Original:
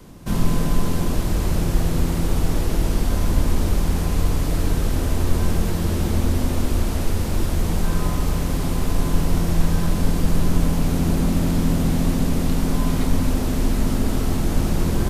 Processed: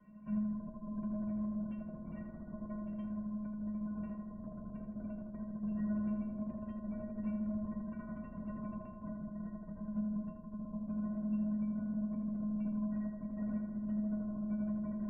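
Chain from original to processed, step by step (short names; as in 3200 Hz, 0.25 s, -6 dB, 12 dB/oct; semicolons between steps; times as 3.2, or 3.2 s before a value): steep low-pass 3100 Hz 48 dB/oct; spectral gate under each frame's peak -30 dB strong; negative-ratio compressor -21 dBFS, ratio -1; resonator 210 Hz, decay 0.23 s, harmonics odd, mix 100%; on a send: analogue delay 80 ms, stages 1024, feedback 72%, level -4.5 dB; on the sum: gain -5.5 dB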